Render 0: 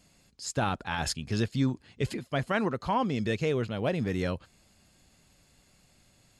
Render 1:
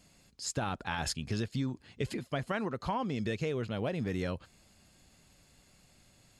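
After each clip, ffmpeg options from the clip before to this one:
-af "acompressor=threshold=0.0316:ratio=5"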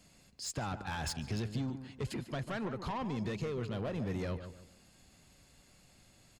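-filter_complex "[0:a]acrossover=split=120[s0][s1];[s1]asoftclip=type=tanh:threshold=0.0211[s2];[s0][s2]amix=inputs=2:normalize=0,asplit=2[s3][s4];[s4]adelay=146,lowpass=f=1800:p=1,volume=0.316,asplit=2[s5][s6];[s6]adelay=146,lowpass=f=1800:p=1,volume=0.34,asplit=2[s7][s8];[s8]adelay=146,lowpass=f=1800:p=1,volume=0.34,asplit=2[s9][s10];[s10]adelay=146,lowpass=f=1800:p=1,volume=0.34[s11];[s3][s5][s7][s9][s11]amix=inputs=5:normalize=0"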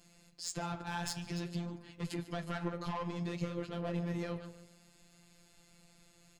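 -af "afftfilt=real='hypot(re,im)*cos(PI*b)':imag='0':win_size=1024:overlap=0.75,flanger=delay=8.5:depth=9.6:regen=-66:speed=0.54:shape=triangular,volume=2.24"

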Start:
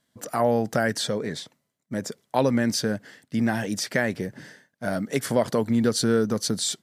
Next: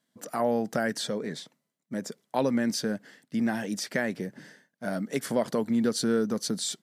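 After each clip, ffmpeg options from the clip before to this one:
-af "lowshelf=f=130:t=q:w=1.5:g=-9,volume=0.562"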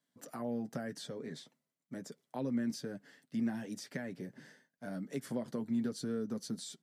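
-filter_complex "[0:a]acrossover=split=330[s0][s1];[s1]acompressor=threshold=0.00794:ratio=2[s2];[s0][s2]amix=inputs=2:normalize=0,flanger=delay=6.9:depth=1.1:regen=-36:speed=1:shape=sinusoidal,volume=0.668"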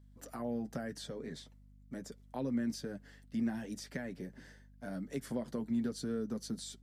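-af "aeval=exprs='val(0)+0.00126*(sin(2*PI*50*n/s)+sin(2*PI*2*50*n/s)/2+sin(2*PI*3*50*n/s)/3+sin(2*PI*4*50*n/s)/4+sin(2*PI*5*50*n/s)/5)':c=same"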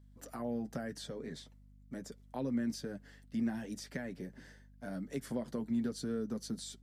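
-af anull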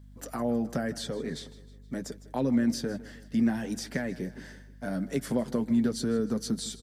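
-af "aecho=1:1:157|314|471|628:0.126|0.0629|0.0315|0.0157,volume=2.82"

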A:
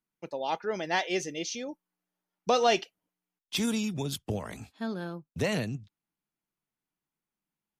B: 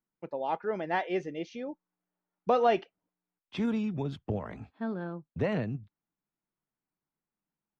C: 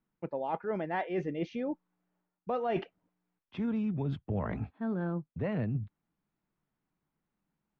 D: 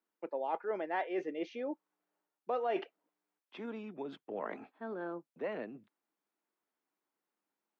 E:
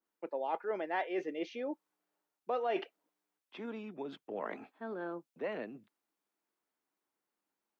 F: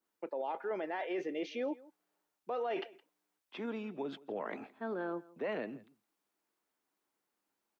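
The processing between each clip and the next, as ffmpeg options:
-af "lowpass=1700"
-af "bass=f=250:g=5,treble=f=4000:g=-15,areverse,acompressor=threshold=0.0141:ratio=6,areverse,volume=2.11"
-af "highpass=f=310:w=0.5412,highpass=f=310:w=1.3066,volume=0.841"
-af "adynamicequalizer=threshold=0.00316:dfrequency=2200:dqfactor=0.7:tfrequency=2200:tqfactor=0.7:attack=5:release=100:ratio=0.375:range=2:mode=boostabove:tftype=highshelf"
-af "alimiter=level_in=2.51:limit=0.0631:level=0:latency=1:release=29,volume=0.398,aecho=1:1:166:0.0841,volume=1.41"

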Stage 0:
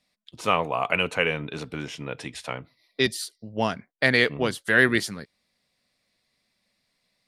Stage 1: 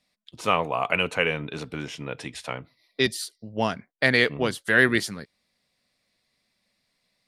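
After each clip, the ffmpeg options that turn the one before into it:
-af anull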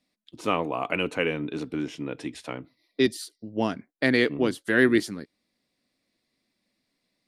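-af "equalizer=f=300:w=1.6:g=13,volume=0.562"

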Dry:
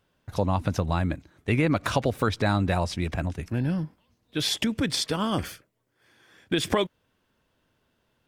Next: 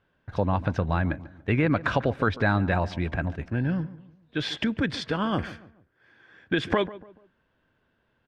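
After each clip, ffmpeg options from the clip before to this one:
-filter_complex "[0:a]lowpass=3000,equalizer=f=1600:w=6.3:g=7.5,asplit=2[s0][s1];[s1]adelay=144,lowpass=f=1300:p=1,volume=0.158,asplit=2[s2][s3];[s3]adelay=144,lowpass=f=1300:p=1,volume=0.39,asplit=2[s4][s5];[s5]adelay=144,lowpass=f=1300:p=1,volume=0.39[s6];[s0][s2][s4][s6]amix=inputs=4:normalize=0"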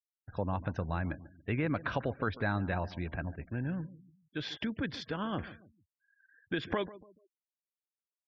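-af "afftfilt=real='re*gte(hypot(re,im),0.00631)':imag='im*gte(hypot(re,im),0.00631)':win_size=1024:overlap=0.75,volume=0.355"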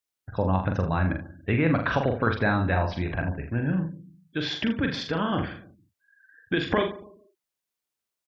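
-af "aecho=1:1:43|80:0.562|0.266,volume=2.51"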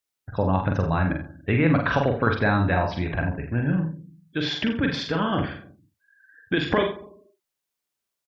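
-filter_complex "[0:a]asplit=2[s0][s1];[s1]adelay=50,volume=0.335[s2];[s0][s2]amix=inputs=2:normalize=0,volume=1.26"

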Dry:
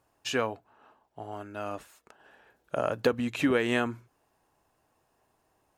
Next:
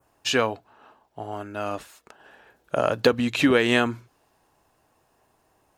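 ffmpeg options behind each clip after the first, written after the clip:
-af "adynamicequalizer=threshold=0.00316:dfrequency=4100:dqfactor=1.2:tfrequency=4100:tqfactor=1.2:attack=5:release=100:ratio=0.375:range=3:mode=boostabove:tftype=bell,volume=2"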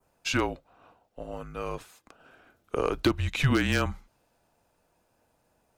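-af "aeval=exprs='0.376*(abs(mod(val(0)/0.376+3,4)-2)-1)':c=same,afreqshift=-150,volume=0.596"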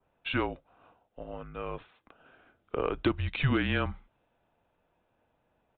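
-af "aresample=8000,aresample=44100,volume=0.708"

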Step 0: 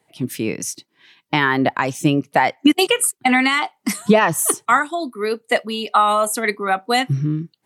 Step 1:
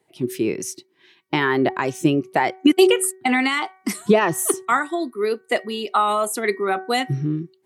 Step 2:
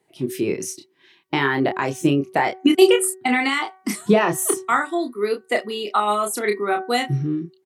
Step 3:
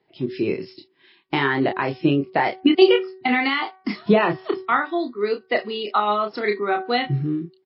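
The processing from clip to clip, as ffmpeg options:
-af "equalizer=f=370:t=o:w=0.27:g=14.5,bandreject=f=377.1:t=h:w=4,bandreject=f=754.2:t=h:w=4,bandreject=f=1131.3:t=h:w=4,bandreject=f=1508.4:t=h:w=4,bandreject=f=1885.5:t=h:w=4,bandreject=f=2262.6:t=h:w=4,volume=0.631"
-filter_complex "[0:a]asplit=2[s0][s1];[s1]adelay=29,volume=0.531[s2];[s0][s2]amix=inputs=2:normalize=0,volume=0.891"
-ar 12000 -c:a libmp3lame -b:a 24k

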